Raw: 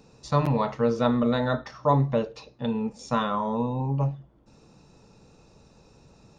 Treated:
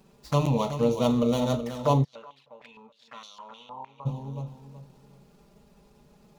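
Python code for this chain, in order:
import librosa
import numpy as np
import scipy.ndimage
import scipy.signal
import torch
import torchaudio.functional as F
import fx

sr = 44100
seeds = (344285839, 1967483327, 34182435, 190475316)

y = scipy.ndimage.median_filter(x, 15, mode='constant')
y = fx.high_shelf(y, sr, hz=2500.0, db=11.5)
y = fx.env_flanger(y, sr, rest_ms=5.7, full_db=-25.0)
y = fx.echo_feedback(y, sr, ms=375, feedback_pct=28, wet_db=-10.0)
y = fx.filter_held_bandpass(y, sr, hz=6.5, low_hz=910.0, high_hz=4700.0, at=(2.03, 4.05), fade=0.02)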